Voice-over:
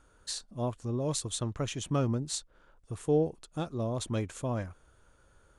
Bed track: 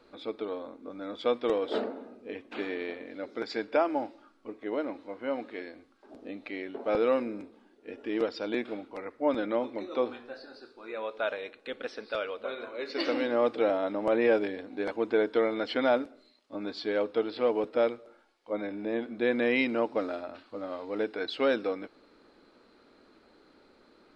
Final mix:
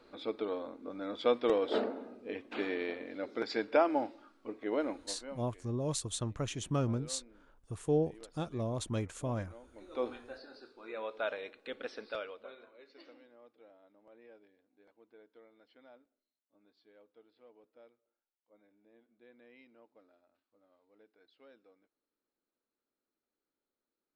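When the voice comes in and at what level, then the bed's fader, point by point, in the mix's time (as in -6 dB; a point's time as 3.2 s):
4.80 s, -3.0 dB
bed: 4.91 s -1 dB
5.67 s -24.5 dB
9.64 s -24.5 dB
10.05 s -4.5 dB
12.06 s -4.5 dB
13.36 s -33.5 dB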